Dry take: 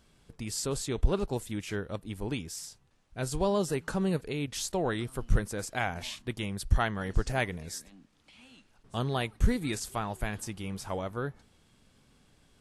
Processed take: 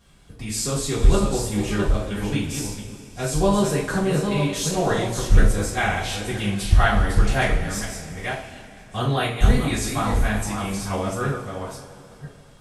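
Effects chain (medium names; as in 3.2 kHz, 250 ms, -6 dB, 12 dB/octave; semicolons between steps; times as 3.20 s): chunks repeated in reverse 490 ms, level -6 dB; two-slope reverb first 0.4 s, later 3.2 s, from -18 dB, DRR -8.5 dB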